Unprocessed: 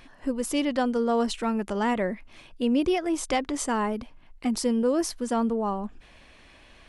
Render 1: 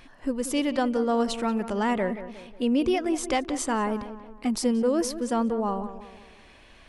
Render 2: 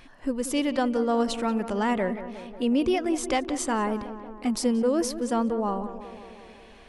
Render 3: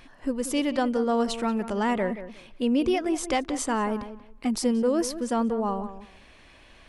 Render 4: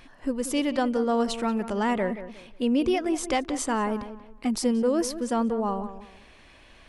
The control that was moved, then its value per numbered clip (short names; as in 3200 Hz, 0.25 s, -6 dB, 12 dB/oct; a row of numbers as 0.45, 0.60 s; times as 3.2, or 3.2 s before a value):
tape echo, feedback: 50, 75, 21, 32%